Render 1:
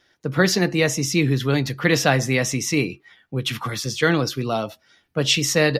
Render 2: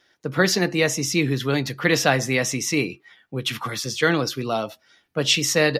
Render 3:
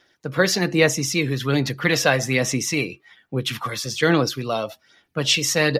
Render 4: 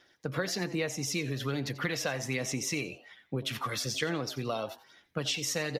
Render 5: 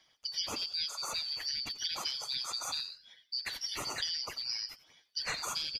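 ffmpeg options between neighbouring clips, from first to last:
-af "lowshelf=f=140:g=-8.5"
-af "aphaser=in_gain=1:out_gain=1:delay=1.9:decay=0.37:speed=1.2:type=sinusoidal"
-filter_complex "[0:a]acompressor=threshold=-26dB:ratio=6,asplit=4[a][b][c][d];[b]adelay=88,afreqshift=140,volume=-17dB[e];[c]adelay=176,afreqshift=280,volume=-26.9dB[f];[d]adelay=264,afreqshift=420,volume=-36.8dB[g];[a][e][f][g]amix=inputs=4:normalize=0,volume=-3.5dB"
-af "afftfilt=real='real(if(lt(b,272),68*(eq(floor(b/68),0)*3+eq(floor(b/68),1)*2+eq(floor(b/68),2)*1+eq(floor(b/68),3)*0)+mod(b,68),b),0)':imag='imag(if(lt(b,272),68*(eq(floor(b/68),0)*3+eq(floor(b/68),1)*2+eq(floor(b/68),2)*1+eq(floor(b/68),3)*0)+mod(b,68),b),0)':win_size=2048:overlap=0.75,volume=-4dB"

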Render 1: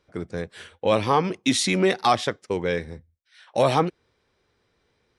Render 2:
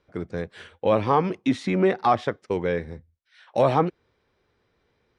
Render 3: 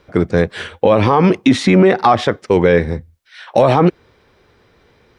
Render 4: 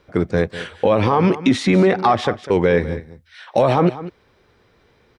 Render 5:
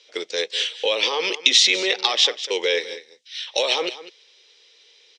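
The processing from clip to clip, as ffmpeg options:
-filter_complex "[0:a]aemphasis=mode=reproduction:type=50fm,acrossover=split=2000[a][b];[b]acompressor=threshold=-41dB:ratio=6[c];[a][c]amix=inputs=2:normalize=0"
-af "alimiter=level_in=17.5dB:limit=-1dB:release=50:level=0:latency=1,volume=-1dB"
-af "aecho=1:1:199:0.178,volume=-4dB"
-af "aexciter=amount=15:drive=4.3:freq=2.3k,highpass=f=430:w=0.5412,highpass=f=430:w=1.3066,equalizer=f=460:t=q:w=4:g=4,equalizer=f=700:t=q:w=4:g=-8,equalizer=f=1.1k:t=q:w=4:g=-4,equalizer=f=2.3k:t=q:w=4:g=-5,equalizer=f=4.5k:t=q:w=4:g=-5,lowpass=f=6k:w=0.5412,lowpass=f=6k:w=1.3066,volume=-6.5dB"

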